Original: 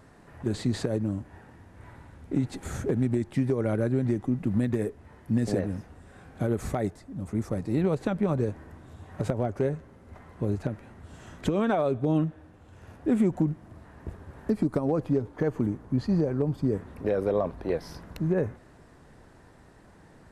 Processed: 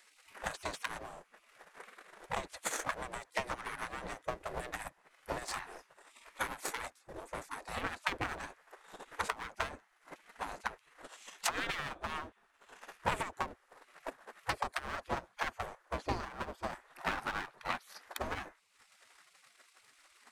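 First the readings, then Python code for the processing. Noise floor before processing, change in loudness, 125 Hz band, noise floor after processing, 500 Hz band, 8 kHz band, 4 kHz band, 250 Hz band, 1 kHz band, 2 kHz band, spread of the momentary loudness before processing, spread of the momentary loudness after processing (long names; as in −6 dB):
−54 dBFS, −11.0 dB, −22.0 dB, −70 dBFS, −15.5 dB, +4.0 dB, +3.5 dB, −23.0 dB, +1.0 dB, +5.0 dB, 14 LU, 18 LU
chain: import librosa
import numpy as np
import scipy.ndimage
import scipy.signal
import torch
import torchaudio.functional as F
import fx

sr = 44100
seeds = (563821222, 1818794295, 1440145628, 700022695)

y = fx.clip_asym(x, sr, top_db=-30.0, bottom_db=-17.0)
y = fx.transient(y, sr, attack_db=12, sustain_db=-8)
y = fx.spec_gate(y, sr, threshold_db=-20, keep='weak')
y = y * librosa.db_to_amplitude(3.5)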